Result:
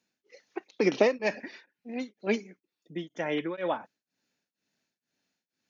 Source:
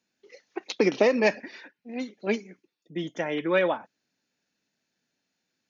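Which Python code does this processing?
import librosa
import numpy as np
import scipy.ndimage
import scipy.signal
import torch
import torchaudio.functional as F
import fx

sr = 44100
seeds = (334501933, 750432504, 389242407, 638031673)

y = x * np.abs(np.cos(np.pi * 2.1 * np.arange(len(x)) / sr))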